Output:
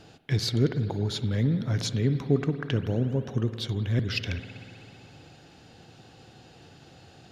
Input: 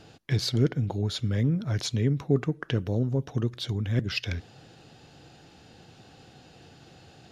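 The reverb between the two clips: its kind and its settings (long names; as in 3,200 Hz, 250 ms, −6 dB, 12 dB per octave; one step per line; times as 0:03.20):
spring reverb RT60 2.8 s, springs 54 ms, chirp 45 ms, DRR 9.5 dB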